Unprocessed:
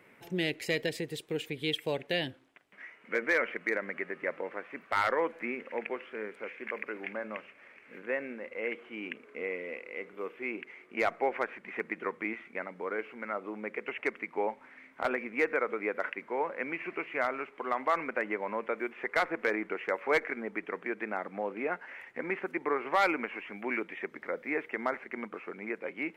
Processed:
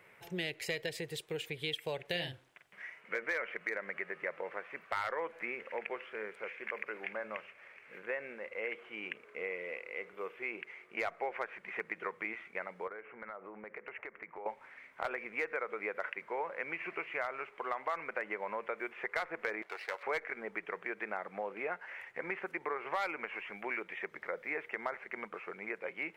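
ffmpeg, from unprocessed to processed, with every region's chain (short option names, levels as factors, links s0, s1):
-filter_complex "[0:a]asettb=1/sr,asplit=3[s0][s1][s2];[s0]atrim=end=2.054[s3];[s1]atrim=start=2.05:end=3.01,asetpts=PTS-STARTPTS,afade=t=in:d=0.004:c=qsin,afade=t=out:st=0.956:d=0.004:c=qsin,bass=f=250:g=4,treble=f=4000:g=4,asplit=2[s4][s5];[s5]adelay=46,volume=0.473[s6];[s4][s6]amix=inputs=2:normalize=0,atrim=end_sample=42336[s7];[s2]atrim=start=3.006[s8];[s3][s7]acrossfade=d=0.004:c1=hsin:c2=qsin[s9];[s9][s8]acrossfade=d=0.004:c1=qsin:c2=hsin,asettb=1/sr,asplit=3[s10][s11][s12];[s10]atrim=end=12.874[s13];[s11]atrim=start=12.87:end=14.46,asetpts=PTS-STARTPTS,afade=t=in:d=0.004:c=qsin,afade=t=out:st=1.586:d=0.004:c=qsin,lowpass=f=2100:w=0.5412,lowpass=f=2100:w=1.3066,acompressor=threshold=0.0112:ratio=10:attack=3.2:release=140:knee=1:detection=peak[s14];[s12]atrim=start=14.456[s15];[s13][s14]acrossfade=d=0.004:c1=hsin:c2=qsin[s16];[s16][s15]acrossfade=d=0.004:c1=qsin:c2=hsin,asettb=1/sr,asplit=3[s17][s18][s19];[s17]atrim=end=19.624[s20];[s18]atrim=start=19.62:end=20.03,asetpts=PTS-STARTPTS,afade=t=in:d=0.004:c=qsin,afade=t=out:st=0.406:d=0.004:c=qsin,aeval=exprs='if(lt(val(0),0),0.251*val(0),val(0))':c=same,highpass=510,bandreject=f=2500:w=24[s21];[s19]atrim=start=20.026[s22];[s20][s21]acrossfade=d=0.004:c1=hsin:c2=qsin[s23];[s23][s22]acrossfade=d=0.004:c1=qsin:c2=hsin,equalizer=f=260:w=2:g=-14.5,acompressor=threshold=0.02:ratio=3"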